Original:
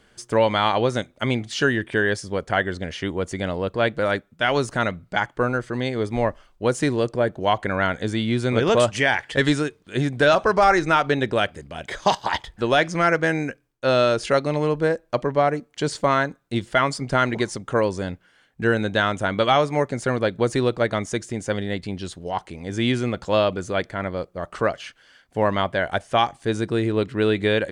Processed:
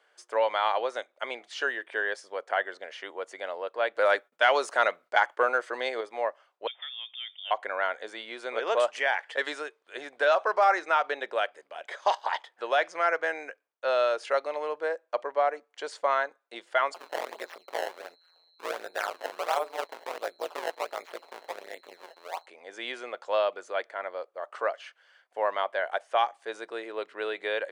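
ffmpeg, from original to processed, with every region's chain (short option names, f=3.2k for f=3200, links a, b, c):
-filter_complex "[0:a]asettb=1/sr,asplit=3[a][b][c];[a]atrim=end=3.954[d];[b]atrim=start=3.95:end=6.01,asetpts=PTS-STARTPTS,afade=t=in:d=0.004:c=qsin,afade=t=out:st=2.056:d=0.004:c=qsin,agate=range=-33dB:threshold=-53dB:ratio=3:release=100:detection=peak,highshelf=f=5.7k:g=4.5,acontrast=63[e];[c]atrim=start=6.006[f];[d][e]acrossfade=d=0.004:c1=hsin:c2=qsin[g];[g][f]acrossfade=d=0.004:c1=qsin:c2=hsin,asettb=1/sr,asplit=3[h][i][j];[h]atrim=end=6.674[k];[i]atrim=start=6.67:end=7.51,asetpts=PTS-STARTPTS,afade=t=in:d=0.004:c=qsin,afade=t=out:st=0.836:d=0.004:c=qsin,acompressor=threshold=-29dB:ratio=3:attack=3.2:release=140:knee=1:detection=peak,lowpass=f=3.1k:t=q:w=0.5098,lowpass=f=3.1k:t=q:w=0.6013,lowpass=f=3.1k:t=q:w=0.9,lowpass=f=3.1k:t=q:w=2.563,afreqshift=-3700[l];[j]atrim=start=7.506[m];[k][l]acrossfade=d=0.004:c1=hsin:c2=qsin[n];[n][m]acrossfade=d=0.004:c1=qsin:c2=hsin,asettb=1/sr,asplit=3[o][p][q];[o]atrim=end=16.944[r];[p]atrim=start=16.94:end=22.46,asetpts=PTS-STARTPTS,afade=t=in:d=0.004:c=qsin,afade=t=out:st=5.516:d=0.004:c=qsin,acrusher=samples=21:mix=1:aa=0.000001:lfo=1:lforange=33.6:lforate=1.4,aeval=exprs='val(0)+0.00447*sin(2*PI*4100*n/s)':c=same,tremolo=f=170:d=0.974[s];[q]atrim=start=22.456[t];[r][s]acrossfade=d=0.004:c1=hsin:c2=qsin[u];[u][t]acrossfade=d=0.004:c1=qsin:c2=hsin,highpass=f=530:w=0.5412,highpass=f=530:w=1.3066,highshelf=f=3.4k:g=-11.5,volume=-4dB"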